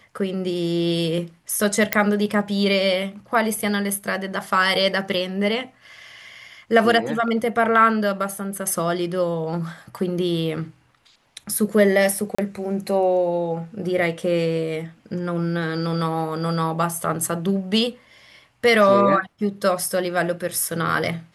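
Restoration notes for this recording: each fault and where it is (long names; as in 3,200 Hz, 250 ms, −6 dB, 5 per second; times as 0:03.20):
0:01.93: click −1 dBFS
0:12.35–0:12.38: drop-out 35 ms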